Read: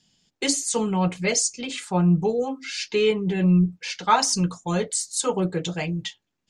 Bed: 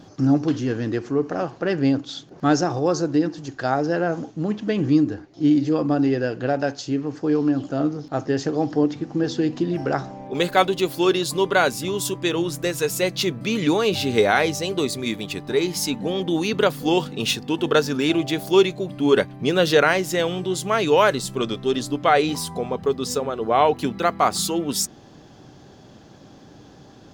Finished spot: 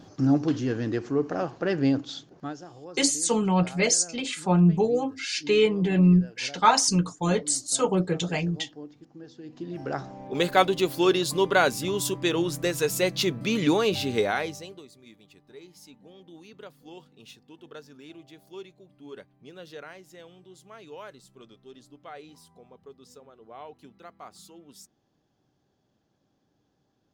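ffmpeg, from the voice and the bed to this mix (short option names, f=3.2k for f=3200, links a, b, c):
-filter_complex "[0:a]adelay=2550,volume=0dB[a];[1:a]volume=16.5dB,afade=t=out:st=2.12:d=0.42:silence=0.112202,afade=t=in:st=9.43:d=1.05:silence=0.1,afade=t=out:st=13.74:d=1.09:silence=0.0668344[b];[a][b]amix=inputs=2:normalize=0"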